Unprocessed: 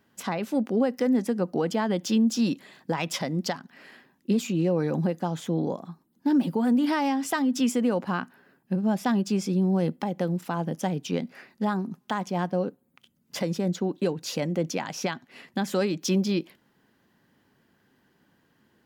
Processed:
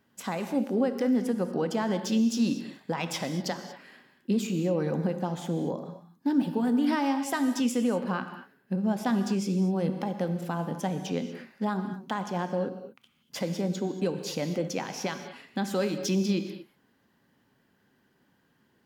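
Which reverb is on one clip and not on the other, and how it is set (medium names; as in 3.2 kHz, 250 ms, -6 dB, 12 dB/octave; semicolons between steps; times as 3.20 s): gated-style reverb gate 260 ms flat, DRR 7.5 dB; trim -3 dB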